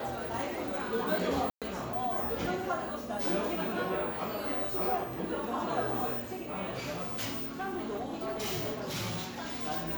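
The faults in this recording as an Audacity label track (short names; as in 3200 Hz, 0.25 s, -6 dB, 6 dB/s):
1.500000	1.620000	gap 0.117 s
6.910000	9.670000	clipped -31 dBFS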